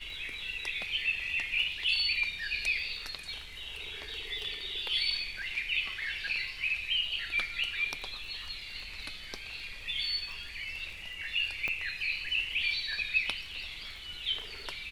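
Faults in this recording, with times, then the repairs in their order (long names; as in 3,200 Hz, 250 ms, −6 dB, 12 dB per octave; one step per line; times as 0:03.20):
surface crackle 22 per second −42 dBFS
0:11.68: click −20 dBFS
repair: click removal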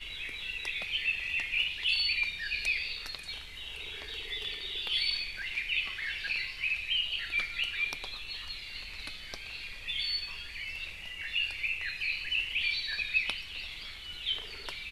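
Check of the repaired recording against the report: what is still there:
0:11.68: click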